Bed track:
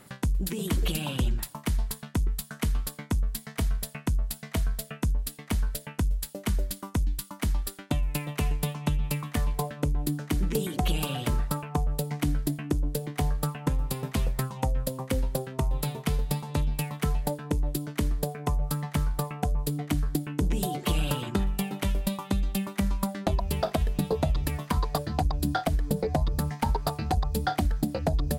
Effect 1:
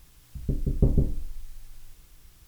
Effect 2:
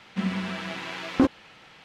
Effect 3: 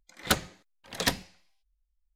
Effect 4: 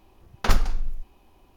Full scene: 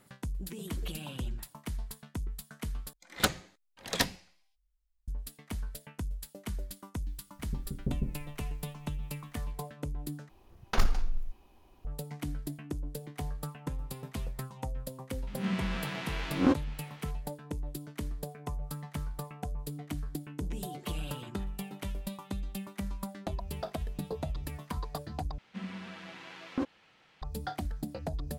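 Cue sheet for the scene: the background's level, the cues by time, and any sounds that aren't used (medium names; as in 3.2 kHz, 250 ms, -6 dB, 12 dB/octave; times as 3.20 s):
bed track -10 dB
2.93 s: replace with 3 -2 dB
7.04 s: add 1 -15 dB + peaking EQ 190 Hz +9 dB
10.29 s: replace with 4 -4 dB + saturation -9 dBFS
15.27 s: add 2 -5.5 dB + reverse spectral sustain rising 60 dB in 0.41 s
25.38 s: replace with 2 -12.5 dB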